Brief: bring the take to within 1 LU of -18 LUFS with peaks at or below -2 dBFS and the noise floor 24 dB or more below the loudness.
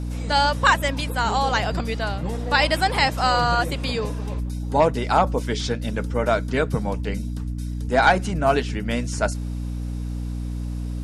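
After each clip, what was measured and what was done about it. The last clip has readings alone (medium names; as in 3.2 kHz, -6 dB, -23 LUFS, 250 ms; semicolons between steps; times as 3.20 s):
hum 60 Hz; highest harmonic 300 Hz; hum level -25 dBFS; loudness -22.5 LUFS; peak level -5.5 dBFS; loudness target -18.0 LUFS
-> de-hum 60 Hz, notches 5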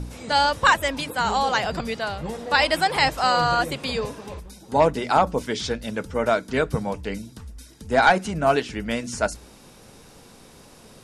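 hum not found; loudness -22.5 LUFS; peak level -5.0 dBFS; loudness target -18.0 LUFS
-> trim +4.5 dB; peak limiter -2 dBFS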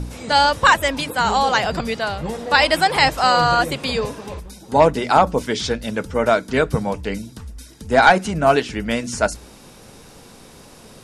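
loudness -18.0 LUFS; peak level -2.0 dBFS; noise floor -44 dBFS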